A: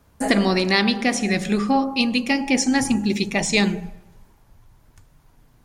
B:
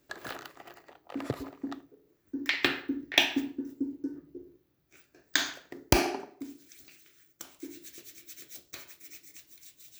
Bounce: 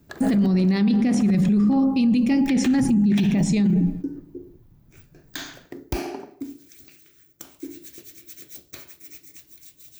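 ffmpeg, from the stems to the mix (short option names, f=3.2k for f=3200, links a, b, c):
-filter_complex "[0:a]agate=range=-8dB:threshold=-42dB:ratio=16:detection=peak,equalizer=f=180:t=o:w=1.4:g=14,volume=-6.5dB[a];[1:a]highshelf=f=9.6k:g=6,acompressor=threshold=-33dB:ratio=2,asoftclip=type=hard:threshold=-24.5dB,volume=1dB[b];[a][b]amix=inputs=2:normalize=0,lowshelf=f=460:g=9.5,alimiter=limit=-13.5dB:level=0:latency=1:release=22"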